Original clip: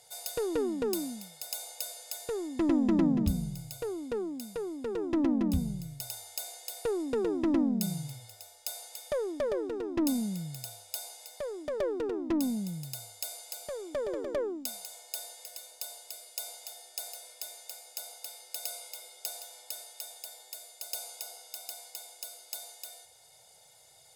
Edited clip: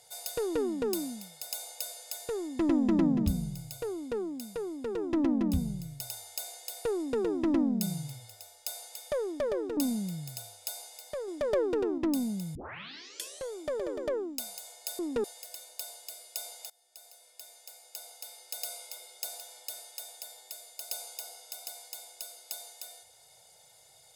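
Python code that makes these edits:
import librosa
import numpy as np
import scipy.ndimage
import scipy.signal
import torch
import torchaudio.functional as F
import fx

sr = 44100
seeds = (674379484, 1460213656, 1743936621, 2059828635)

y = fx.edit(x, sr, fx.duplicate(start_s=6.96, length_s=0.25, to_s=15.26),
    fx.cut(start_s=9.77, length_s=0.27),
    fx.clip_gain(start_s=11.55, length_s=0.7, db=3.5),
    fx.tape_start(start_s=12.82, length_s=0.97),
    fx.fade_in_from(start_s=16.72, length_s=1.94, floor_db=-21.5), tone=tone)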